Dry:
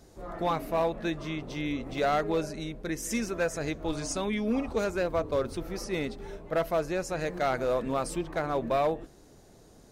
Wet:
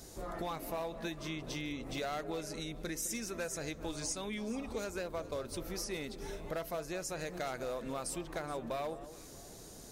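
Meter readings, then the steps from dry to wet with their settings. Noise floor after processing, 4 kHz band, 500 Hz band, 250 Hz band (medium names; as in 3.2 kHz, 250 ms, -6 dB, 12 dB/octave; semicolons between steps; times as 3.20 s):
-51 dBFS, -3.0 dB, -10.5 dB, -9.0 dB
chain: treble shelf 3.8 kHz +12 dB; compression 4:1, threshold -40 dBFS, peak gain reduction 15 dB; echo whose repeats swap between lows and highs 211 ms, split 1.2 kHz, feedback 54%, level -12.5 dB; trim +1.5 dB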